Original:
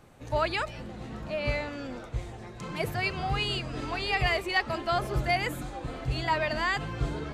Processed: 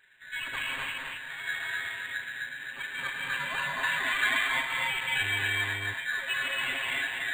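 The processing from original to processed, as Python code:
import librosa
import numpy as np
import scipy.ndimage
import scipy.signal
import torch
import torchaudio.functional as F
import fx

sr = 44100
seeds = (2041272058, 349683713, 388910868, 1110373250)

y = fx.lower_of_two(x, sr, delay_ms=1.4, at=(2.41, 3.21))
y = fx.echo_feedback(y, sr, ms=249, feedback_pct=29, wet_db=-3)
y = fx.rev_gated(y, sr, seeds[0], gate_ms=320, shape='rising', drr_db=-2.0)
y = fx.freq_invert(y, sr, carrier_hz=3900)
y = fx.high_shelf(y, sr, hz=2700.0, db=8.5, at=(3.83, 4.47))
y = fx.dmg_buzz(y, sr, base_hz=100.0, harmonics=28, level_db=-36.0, tilt_db=-7, odd_only=False, at=(5.2, 5.92), fade=0.02)
y = y + 0.76 * np.pad(y, (int(7.5 * sr / 1000.0), 0))[:len(y)]
y = np.interp(np.arange(len(y)), np.arange(len(y))[::8], y[::8])
y = F.gain(torch.from_numpy(y), -6.5).numpy()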